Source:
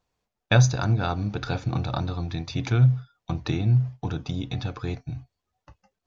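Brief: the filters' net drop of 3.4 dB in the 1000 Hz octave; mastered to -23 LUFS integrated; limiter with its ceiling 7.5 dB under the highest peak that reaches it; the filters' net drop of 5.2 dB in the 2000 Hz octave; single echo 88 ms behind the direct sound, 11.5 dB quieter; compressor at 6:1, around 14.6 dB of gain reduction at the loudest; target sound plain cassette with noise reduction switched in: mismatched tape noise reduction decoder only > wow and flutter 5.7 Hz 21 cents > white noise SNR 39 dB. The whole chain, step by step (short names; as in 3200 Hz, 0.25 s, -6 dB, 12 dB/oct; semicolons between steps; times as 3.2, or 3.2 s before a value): bell 1000 Hz -3.5 dB; bell 2000 Hz -6 dB; compressor 6:1, threshold -29 dBFS; limiter -26 dBFS; echo 88 ms -11.5 dB; mismatched tape noise reduction decoder only; wow and flutter 5.7 Hz 21 cents; white noise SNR 39 dB; gain +13.5 dB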